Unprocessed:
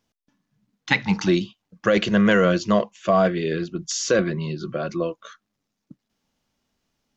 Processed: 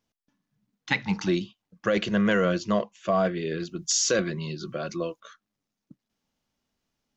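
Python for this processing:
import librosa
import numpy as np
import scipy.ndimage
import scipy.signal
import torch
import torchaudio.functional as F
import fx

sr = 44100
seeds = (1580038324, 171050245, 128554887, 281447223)

y = fx.high_shelf(x, sr, hz=3600.0, db=11.5, at=(3.6, 5.2))
y = y * 10.0 ** (-5.5 / 20.0)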